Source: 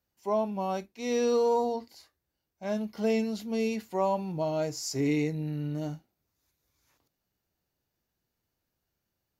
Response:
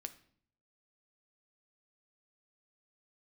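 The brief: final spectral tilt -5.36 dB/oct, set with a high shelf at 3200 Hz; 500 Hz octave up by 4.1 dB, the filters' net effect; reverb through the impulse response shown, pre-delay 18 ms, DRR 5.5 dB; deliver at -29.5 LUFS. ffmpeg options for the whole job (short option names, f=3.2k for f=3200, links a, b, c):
-filter_complex "[0:a]equalizer=f=500:t=o:g=4.5,highshelf=f=3.2k:g=4,asplit=2[a][b];[1:a]atrim=start_sample=2205,adelay=18[c];[b][c]afir=irnorm=-1:irlink=0,volume=-2dB[d];[a][d]amix=inputs=2:normalize=0,volume=-2dB"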